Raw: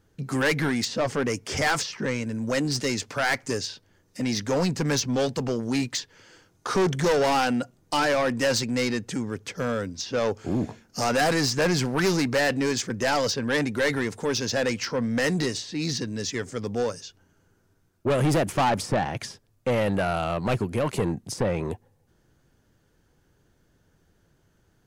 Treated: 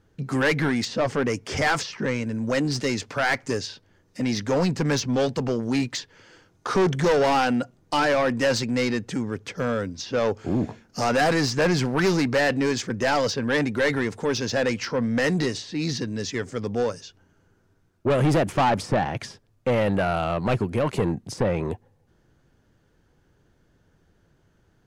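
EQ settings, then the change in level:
high-shelf EQ 6,600 Hz −10.5 dB
+2.0 dB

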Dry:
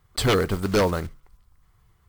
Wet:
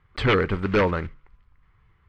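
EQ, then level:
low-pass with resonance 2,300 Hz, resonance Q 1.7
parametric band 690 Hz −7.5 dB 0.25 octaves
0.0 dB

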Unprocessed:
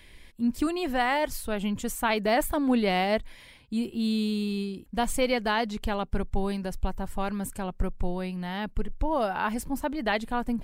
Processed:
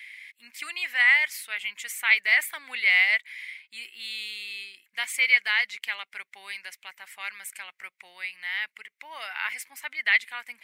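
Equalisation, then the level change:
high-pass with resonance 2,100 Hz, resonance Q 7.4
0.0 dB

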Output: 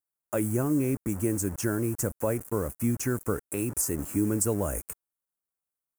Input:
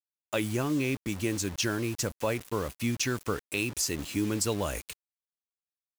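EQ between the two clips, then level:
drawn EQ curve 1,400 Hz 0 dB, 3,800 Hz −30 dB, 8,600 Hz −4 dB
dynamic equaliser 1,100 Hz, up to −7 dB, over −48 dBFS, Q 1.1
high-shelf EQ 3,600 Hz +8 dB
+3.5 dB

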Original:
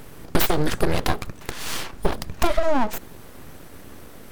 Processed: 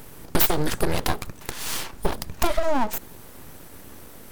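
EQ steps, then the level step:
parametric band 910 Hz +3 dB 0.21 octaves
high-shelf EQ 6,500 Hz +8 dB
−2.5 dB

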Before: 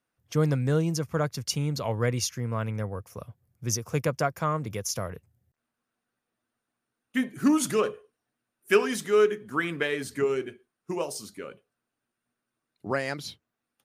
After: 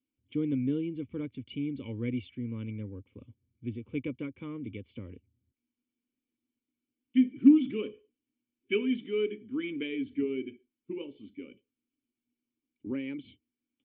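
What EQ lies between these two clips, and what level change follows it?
formant resonators in series i
Butterworth band-reject 680 Hz, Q 2.8
parametric band 160 Hz −13 dB 0.63 octaves
+7.5 dB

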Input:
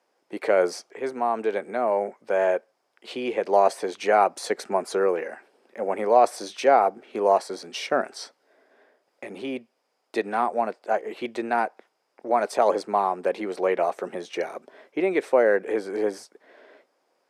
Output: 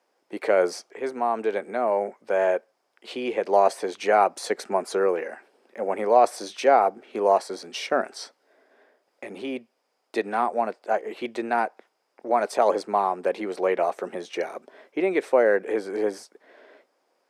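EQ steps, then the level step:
parametric band 140 Hz −7 dB 0.3 octaves
0.0 dB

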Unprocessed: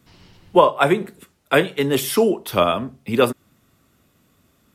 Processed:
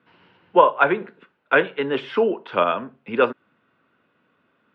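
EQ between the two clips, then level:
loudspeaker in its box 200–3,100 Hz, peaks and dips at 490 Hz +5 dB, 960 Hz +6 dB, 1,500 Hz +10 dB, 2,700 Hz +4 dB
−5.0 dB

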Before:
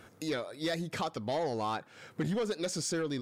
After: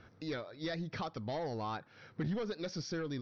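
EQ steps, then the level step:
Chebyshev low-pass with heavy ripple 5,900 Hz, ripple 3 dB
low-shelf EQ 150 Hz +12 dB
−4.5 dB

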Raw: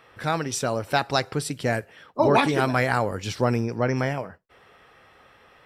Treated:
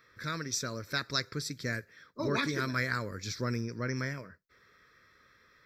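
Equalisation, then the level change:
high-shelf EQ 2,300 Hz +8.5 dB
phaser with its sweep stopped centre 2,900 Hz, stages 6
−8.5 dB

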